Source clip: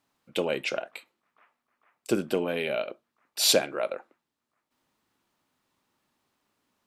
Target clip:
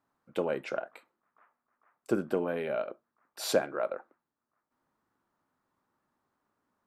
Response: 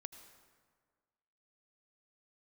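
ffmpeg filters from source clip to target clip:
-af "highshelf=f=2k:t=q:w=1.5:g=-9.5,volume=-3dB"

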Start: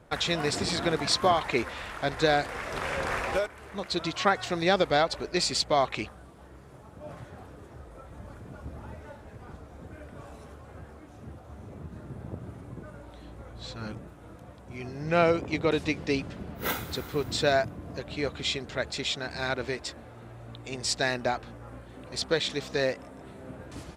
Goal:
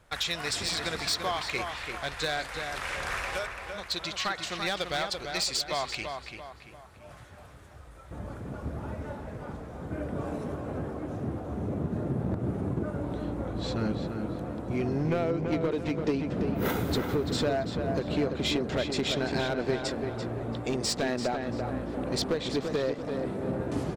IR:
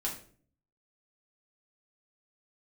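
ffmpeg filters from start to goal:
-filter_complex "[0:a]asetnsamples=n=441:p=0,asendcmd='8.11 equalizer g 4.5;9.91 equalizer g 11.5',equalizer=f=280:w=0.31:g=-12.5,acompressor=threshold=-26dB:ratio=16,volume=24.5dB,asoftclip=hard,volume=-24.5dB,asplit=2[a][b];[b]adelay=339,lowpass=f=3.2k:p=1,volume=-5.5dB,asplit=2[c][d];[d]adelay=339,lowpass=f=3.2k:p=1,volume=0.44,asplit=2[e][f];[f]adelay=339,lowpass=f=3.2k:p=1,volume=0.44,asplit=2[g][h];[h]adelay=339,lowpass=f=3.2k:p=1,volume=0.44,asplit=2[i][j];[j]adelay=339,lowpass=f=3.2k:p=1,volume=0.44[k];[a][c][e][g][i][k]amix=inputs=6:normalize=0,volume=2dB"

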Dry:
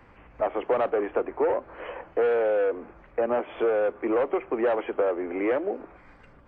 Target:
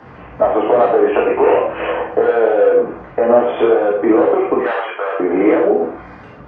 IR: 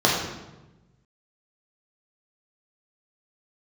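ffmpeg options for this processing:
-filter_complex "[0:a]asettb=1/sr,asplit=3[a][b][c];[a]atrim=end=4.584[d];[b]atrim=start=4.58:end=5.2,asetpts=PTS-STARTPTS,afade=t=in:d=0.004:c=qsin,afade=t=out:st=0.616:d=0.004:c=qsin,highpass=1.3k[e];[c]atrim=start=5.196[f];[d][e]acrossfade=d=0.004:c1=hsin:c2=qsin[g];[g][f]acrossfade=d=0.004:c1=qsin:c2=hsin,acompressor=threshold=-27dB:ratio=6,asettb=1/sr,asplit=3[h][i][j];[h]atrim=end=1.074[k];[i]atrim=start=1.07:end=1.82,asetpts=PTS-STARTPTS,afade=t=in:d=0.004:c=qsin,afade=t=out:st=0.746:d=0.004:c=qsin,lowpass=f=2.7k:t=q:w=8.3[l];[j]atrim=start=1.816[m];[k][l]acrossfade=d=0.004:c1=hsin:c2=qsin[n];[n][m]acrossfade=d=0.004:c1=qsin:c2=hsin[o];[1:a]atrim=start_sample=2205,atrim=end_sample=6615[p];[o][p]afir=irnorm=-1:irlink=0,volume=-3dB"

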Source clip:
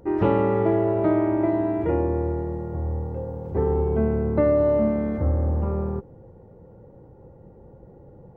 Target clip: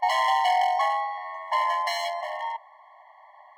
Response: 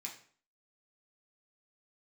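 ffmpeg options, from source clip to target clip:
-af "aeval=exprs='0.141*(abs(mod(val(0)/0.141+3,4)-2)-1)':c=same,asetrate=103194,aresample=44100,afftfilt=real='re*eq(mod(floor(b*sr/1024/560),2),1)':imag='im*eq(mod(floor(b*sr/1024/560),2),1)':win_size=1024:overlap=0.75,volume=2dB"

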